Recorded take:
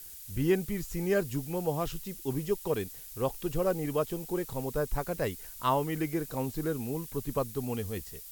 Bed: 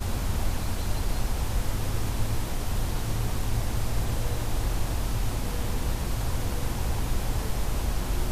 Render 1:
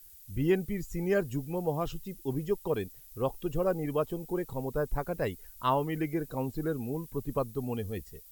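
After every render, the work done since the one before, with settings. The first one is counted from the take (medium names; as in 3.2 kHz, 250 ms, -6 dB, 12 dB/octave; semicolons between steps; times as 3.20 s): noise reduction 11 dB, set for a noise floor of -46 dBFS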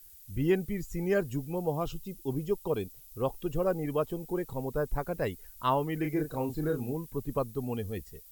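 1.47–3.20 s: peaking EQ 1.8 kHz -11 dB 0.28 oct; 6.01–6.93 s: doubling 33 ms -5 dB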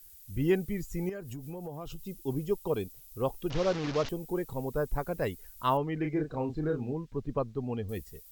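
1.09–1.99 s: compression 8:1, threshold -36 dBFS; 3.50–4.09 s: one-bit delta coder 32 kbps, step -30.5 dBFS; 5.77–7.89 s: distance through air 150 m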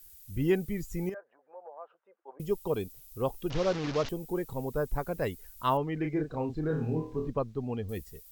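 1.14–2.40 s: elliptic band-pass 540–1700 Hz, stop band 80 dB; 6.68–7.30 s: flutter echo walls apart 4.4 m, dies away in 0.45 s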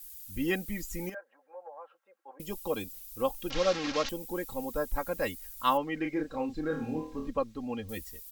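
tilt shelf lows -4.5 dB; comb 3.7 ms, depth 73%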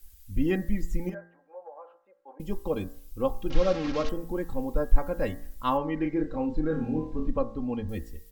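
tilt EQ -3 dB/octave; de-hum 57.06 Hz, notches 36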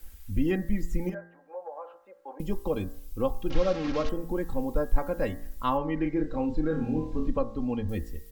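three bands compressed up and down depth 40%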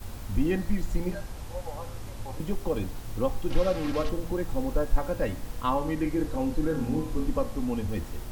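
add bed -11 dB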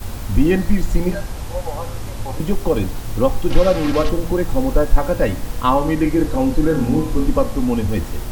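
trim +11 dB; peak limiter -1 dBFS, peak gain reduction 1 dB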